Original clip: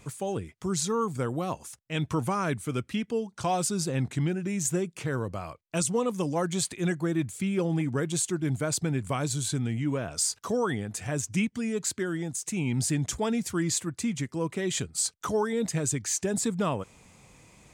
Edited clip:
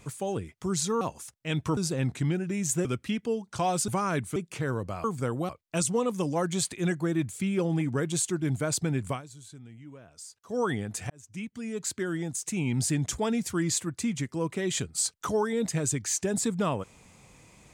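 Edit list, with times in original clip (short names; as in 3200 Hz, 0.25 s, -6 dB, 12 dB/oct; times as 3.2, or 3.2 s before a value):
1.01–1.46 move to 5.49
2.22–2.7 swap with 3.73–4.81
9.1–10.6 dip -18 dB, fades 0.12 s
11.1–12.13 fade in linear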